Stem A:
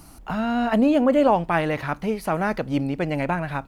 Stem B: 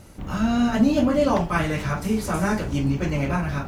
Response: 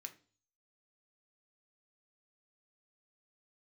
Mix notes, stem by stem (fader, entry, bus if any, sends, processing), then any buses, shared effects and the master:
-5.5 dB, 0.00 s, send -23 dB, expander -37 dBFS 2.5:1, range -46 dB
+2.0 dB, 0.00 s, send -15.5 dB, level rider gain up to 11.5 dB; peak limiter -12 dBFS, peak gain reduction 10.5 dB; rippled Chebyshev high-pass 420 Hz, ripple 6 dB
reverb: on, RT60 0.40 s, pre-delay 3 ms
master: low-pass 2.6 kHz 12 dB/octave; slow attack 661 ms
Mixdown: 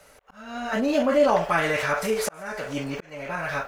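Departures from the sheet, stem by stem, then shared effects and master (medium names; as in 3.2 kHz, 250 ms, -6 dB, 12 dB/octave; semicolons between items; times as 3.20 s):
stem B: polarity flipped; master: missing low-pass 2.6 kHz 12 dB/octave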